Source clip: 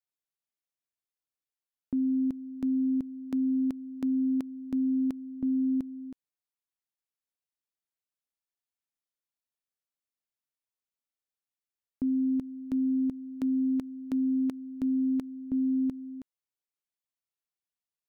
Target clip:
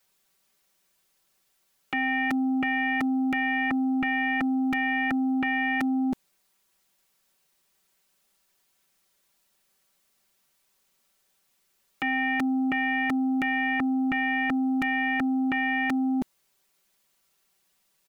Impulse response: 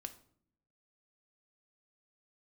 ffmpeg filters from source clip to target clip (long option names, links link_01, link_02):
-af "aecho=1:1:5.2:0.79,aeval=exprs='0.0668*sin(PI/2*7.08*val(0)/0.0668)':channel_layout=same"